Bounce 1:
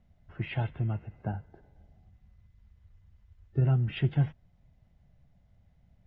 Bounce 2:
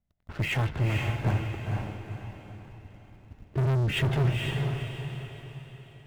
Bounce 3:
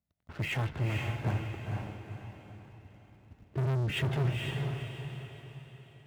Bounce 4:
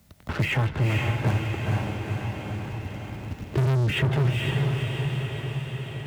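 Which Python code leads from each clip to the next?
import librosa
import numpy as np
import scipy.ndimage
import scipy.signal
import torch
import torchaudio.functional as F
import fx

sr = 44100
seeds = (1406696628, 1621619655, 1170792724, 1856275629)

y1 = fx.leveller(x, sr, passes=5)
y1 = fx.echo_diffused(y1, sr, ms=482, feedback_pct=43, wet_db=-3)
y1 = y1 * librosa.db_to_amplitude(-6.5)
y2 = scipy.signal.sosfilt(scipy.signal.butter(2, 66.0, 'highpass', fs=sr, output='sos'), y1)
y2 = y2 * librosa.db_to_amplitude(-4.5)
y3 = fx.notch(y2, sr, hz=700.0, q=18.0)
y3 = fx.band_squash(y3, sr, depth_pct=70)
y3 = y3 * librosa.db_to_amplitude(8.5)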